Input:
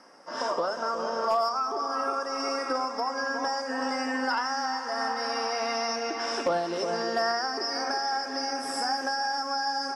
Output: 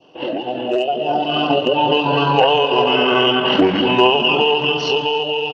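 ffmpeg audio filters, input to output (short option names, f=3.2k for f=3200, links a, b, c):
-filter_complex "[0:a]dynaudnorm=f=650:g=7:m=8.5dB,atempo=1.8,asplit=2[a][b];[b]aecho=0:1:293|586:0.112|0.0236[c];[a][c]amix=inputs=2:normalize=0,asetrate=24046,aresample=44100,atempo=1.83401,adynamicequalizer=threshold=0.0112:dfrequency=1600:dqfactor=0.75:tfrequency=1600:tqfactor=0.75:attack=5:release=100:ratio=0.375:range=1.5:mode=boostabove:tftype=bell,lowpass=10k,lowshelf=f=240:g=-9.5,volume=8dB"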